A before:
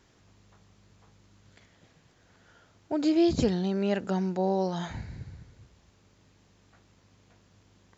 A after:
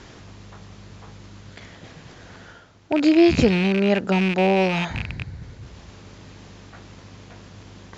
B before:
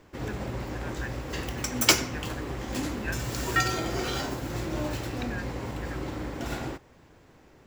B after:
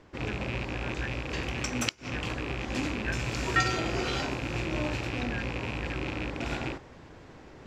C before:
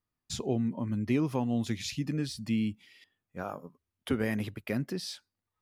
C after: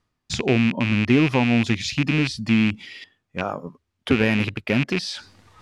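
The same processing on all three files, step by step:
loose part that buzzes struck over −36 dBFS, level −24 dBFS
reversed playback
upward compression, threshold −40 dBFS
reversed playback
gate with flip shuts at −10 dBFS, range −32 dB
low-pass filter 6,100 Hz 12 dB per octave
normalise the peak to −6 dBFS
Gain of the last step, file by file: +8.0, −0.5, +10.5 decibels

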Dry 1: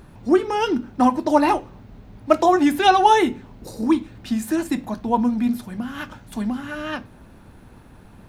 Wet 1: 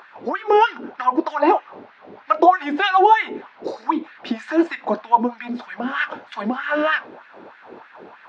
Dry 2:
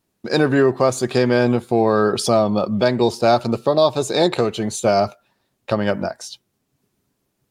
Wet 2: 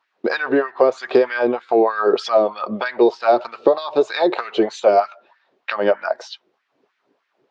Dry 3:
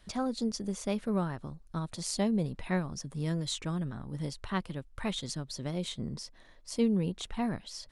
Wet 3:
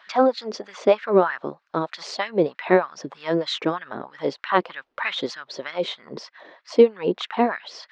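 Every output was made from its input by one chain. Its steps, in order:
downward compressor 6 to 1, threshold −22 dBFS
auto-filter high-pass sine 3.2 Hz 360–1,800 Hz
Gaussian smoothing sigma 2.2 samples
normalise the peak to −2 dBFS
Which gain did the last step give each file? +8.5, +7.5, +14.0 decibels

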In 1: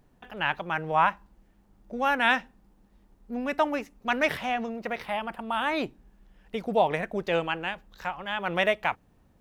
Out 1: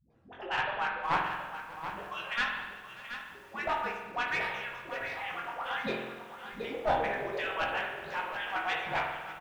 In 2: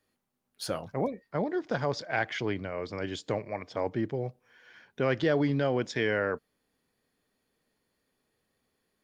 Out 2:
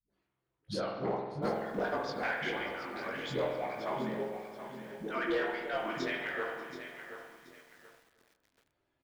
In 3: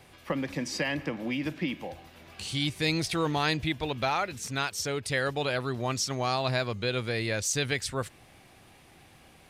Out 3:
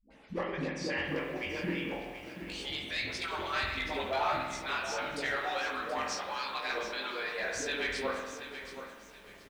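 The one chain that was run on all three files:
harmonic-percussive split with one part muted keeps percussive
high-shelf EQ 5,400 Hz −8.5 dB
mains-hum notches 60/120/180/240/300 Hz
in parallel at −2 dB: downward compressor 12 to 1, threshold −40 dBFS
on the sum: chorus effect 1.6 Hz, delay 18.5 ms, depth 5.1 ms
all-pass dispersion highs, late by 105 ms, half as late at 380 Hz
asymmetric clip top −29.5 dBFS
high-frequency loss of the air 59 metres
double-tracking delay 15 ms −11 dB
on a send: repeating echo 589 ms, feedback 38%, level −20.5 dB
on the sum: spring reverb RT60 1.2 s, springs 46 ms, chirp 30 ms, DRR 2 dB
feedback echo at a low word length 728 ms, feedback 35%, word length 9 bits, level −10 dB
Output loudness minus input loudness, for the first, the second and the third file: −6.0, −5.0, −4.5 LU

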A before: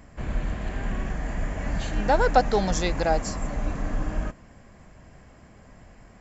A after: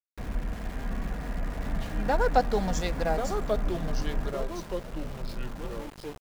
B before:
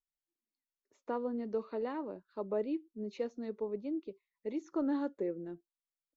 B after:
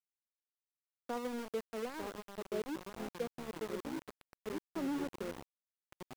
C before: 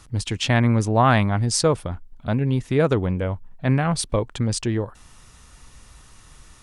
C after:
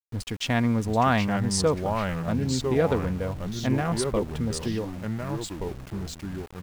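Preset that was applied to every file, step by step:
adaptive Wiener filter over 9 samples
comb filter 4.2 ms, depth 31%
delay with pitch and tempo change per echo 692 ms, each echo −3 semitones, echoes 3, each echo −6 dB
centre clipping without the shift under −35 dBFS
level −5 dB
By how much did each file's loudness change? −4.5, −4.0, −5.0 LU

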